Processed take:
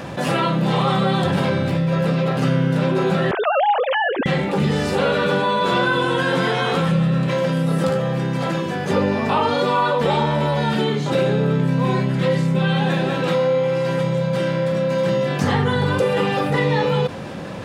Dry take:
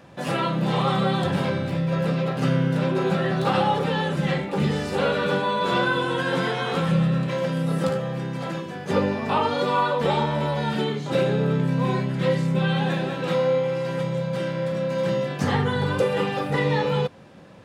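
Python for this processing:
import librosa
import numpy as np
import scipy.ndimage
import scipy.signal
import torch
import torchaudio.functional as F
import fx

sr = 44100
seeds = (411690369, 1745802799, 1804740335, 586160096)

y = fx.sine_speech(x, sr, at=(3.31, 4.26))
y = fx.env_flatten(y, sr, amount_pct=50)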